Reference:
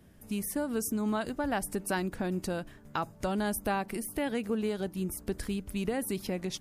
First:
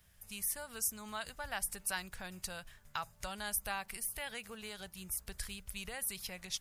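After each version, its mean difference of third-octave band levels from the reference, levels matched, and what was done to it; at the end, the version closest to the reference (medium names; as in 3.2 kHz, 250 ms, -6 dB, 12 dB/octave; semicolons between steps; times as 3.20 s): 8.0 dB: amplifier tone stack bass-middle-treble 10-0-10; companded quantiser 8-bit; trim +2 dB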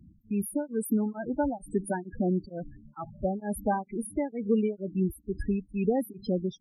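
15.0 dB: loudest bins only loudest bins 8; tremolo of two beating tones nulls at 2.2 Hz; trim +7 dB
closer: first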